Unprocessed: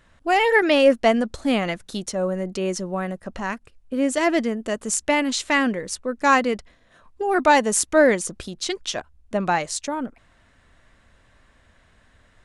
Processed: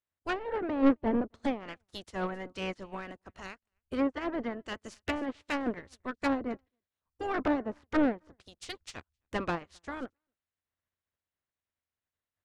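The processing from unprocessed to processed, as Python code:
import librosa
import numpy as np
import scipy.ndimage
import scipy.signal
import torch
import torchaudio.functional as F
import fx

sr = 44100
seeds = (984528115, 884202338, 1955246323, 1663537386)

p1 = fx.spec_clip(x, sr, under_db=21)
p2 = fx.dynamic_eq(p1, sr, hz=270.0, q=1.4, threshold_db=-39.0, ratio=4.0, max_db=5)
p3 = fx.env_lowpass_down(p2, sr, base_hz=660.0, full_db=-14.0)
p4 = p3 + fx.echo_single(p3, sr, ms=265, db=-22.0, dry=0)
p5 = 10.0 ** (-17.5 / 20.0) * np.tanh(p4 / 10.0 ** (-17.5 / 20.0))
p6 = fx.peak_eq(p5, sr, hz=85.0, db=14.0, octaves=0.53)
y = fx.upward_expand(p6, sr, threshold_db=-46.0, expansion=2.5)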